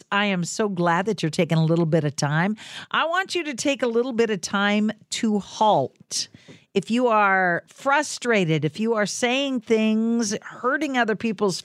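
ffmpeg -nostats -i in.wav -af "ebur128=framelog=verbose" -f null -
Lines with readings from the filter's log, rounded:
Integrated loudness:
  I:         -22.4 LUFS
  Threshold: -32.5 LUFS
Loudness range:
  LRA:         1.8 LU
  Threshold: -42.5 LUFS
  LRA low:   -23.3 LUFS
  LRA high:  -21.5 LUFS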